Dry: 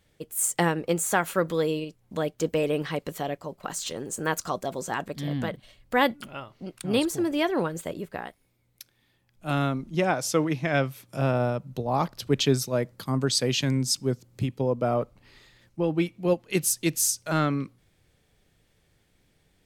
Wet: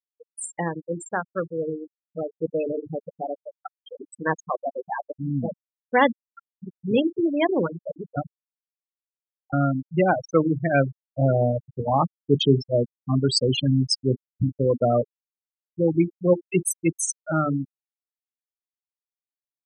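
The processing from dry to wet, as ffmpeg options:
-filter_complex "[0:a]asplit=3[a][b][c];[a]atrim=end=8.172[d];[b]atrim=start=8.168:end=9.532,asetpts=PTS-STARTPTS,areverse[e];[c]atrim=start=9.528[f];[d][e]acrossfade=d=0.004:c1=hsin:c2=hsin[g];[g][f]acrossfade=d=0.004:c1=hsin:c2=hsin,bandreject=f=50:t=h:w=6,bandreject=f=100:t=h:w=6,bandreject=f=150:t=h:w=6,bandreject=f=200:t=h:w=6,bandreject=f=250:t=h:w=6,bandreject=f=300:t=h:w=6,bandreject=f=350:t=h:w=6,bandreject=f=400:t=h:w=6,bandreject=f=450:t=h:w=6,afftfilt=real='re*gte(hypot(re,im),0.141)':imag='im*gte(hypot(re,im),0.141)':win_size=1024:overlap=0.75,dynaudnorm=f=510:g=11:m=9.5dB,volume=-3dB"

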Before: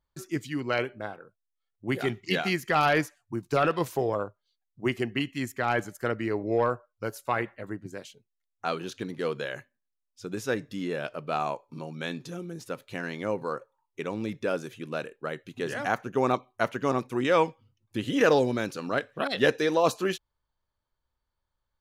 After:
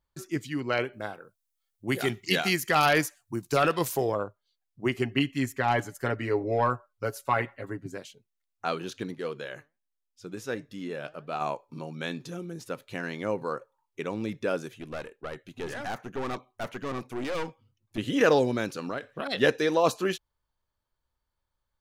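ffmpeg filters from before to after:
-filter_complex "[0:a]asettb=1/sr,asplit=3[a][b][c];[a]atrim=end=0.934[d];[b]atrim=start=0.93:end=4.12,asetpts=PTS-STARTPTS,afade=t=in:d=0.004:c=qsin,afade=t=out:st=3.186:d=0.004:c=qsin,highshelf=f=4.6k:g=12[e];[c]atrim=start=4.116[f];[d][e]acrossfade=d=0.004:c1=hsin:c2=qsin[g];[g][f]acrossfade=d=0.004:c1=qsin:c2=hsin,asettb=1/sr,asplit=3[h][i][j];[h]atrim=end=4.944[k];[i]atrim=start=4.94:end=7.97,asetpts=PTS-STARTPTS,afade=t=in:d=0.004:c=qsin,afade=t=out:st=3.026:d=0.004:c=qsin,aecho=1:1:7.3:0.65,atrim=end_sample=133623[l];[j]atrim=start=7.966[m];[k][l]acrossfade=d=0.004:c1=hsin:c2=qsin[n];[n][m]acrossfade=d=0.004:c1=qsin:c2=hsin,asplit=3[o][p][q];[o]afade=t=out:st=9.13:d=0.02[r];[p]flanger=delay=1.5:depth=5.6:regen=84:speed=1.4:shape=triangular,afade=t=in:st=9.13:d=0.02,afade=t=out:st=11.4:d=0.02[s];[q]afade=t=in:st=11.4:d=0.02[t];[r][s][t]amix=inputs=3:normalize=0,asettb=1/sr,asplit=3[u][v][w];[u]atrim=end=14.684[x];[v]atrim=start=14.68:end=17.98,asetpts=PTS-STARTPTS,afade=t=in:d=0.004:c=qsin,afade=t=out:st=3.296:d=0.004:c=qsin,aeval=exprs='(tanh(28.2*val(0)+0.5)-tanh(0.5))/28.2':c=same[y];[w]atrim=start=17.976[z];[x][y]acrossfade=d=0.004:c1=hsin:c2=qsin[aa];[aa][z]acrossfade=d=0.004:c1=qsin:c2=hsin,asettb=1/sr,asplit=3[ab][ac][ad];[ab]atrim=end=18.814[ae];[ac]atrim=start=18.81:end=19.28,asetpts=PTS-STARTPTS,afade=t=in:d=0.004:c=qsin,afade=t=out:st=0.466:d=0.004:c=qsin,acompressor=threshold=-28dB:ratio=6:attack=3.2:release=140:knee=1:detection=peak[af];[ad]atrim=start=19.276[ag];[ae][af]acrossfade=d=0.004:c1=hsin:c2=qsin[ah];[ah][ag]acrossfade=d=0.004:c1=qsin:c2=hsin"

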